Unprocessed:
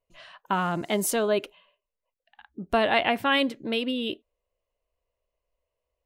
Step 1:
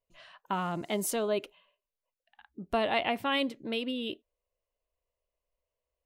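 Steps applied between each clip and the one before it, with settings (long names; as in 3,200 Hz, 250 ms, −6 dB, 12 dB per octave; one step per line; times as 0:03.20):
dynamic equaliser 1,600 Hz, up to −6 dB, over −45 dBFS, Q 4.3
level −5.5 dB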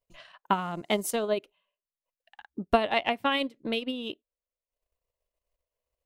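transient designer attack +9 dB, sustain −11 dB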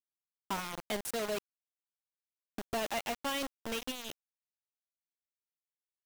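soft clipping −22 dBFS, distortion −10 dB
bit reduction 5 bits
level −7 dB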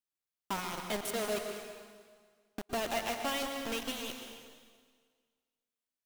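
dense smooth reverb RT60 1.7 s, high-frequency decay 0.95×, pre-delay 105 ms, DRR 4 dB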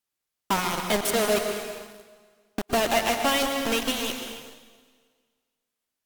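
in parallel at −7 dB: bit-depth reduction 8 bits, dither none
on the sum: level +8 dB
AAC 96 kbit/s 48,000 Hz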